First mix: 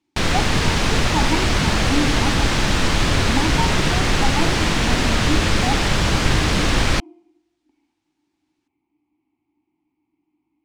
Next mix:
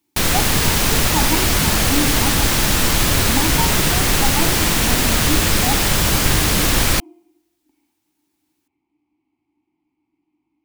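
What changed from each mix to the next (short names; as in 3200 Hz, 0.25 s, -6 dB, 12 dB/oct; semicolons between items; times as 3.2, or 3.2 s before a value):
master: remove air absorption 100 m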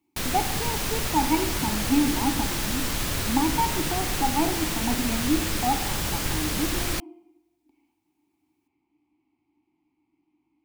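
background -11.5 dB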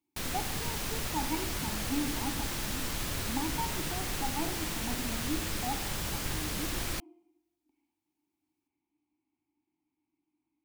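speech -11.5 dB; background -7.0 dB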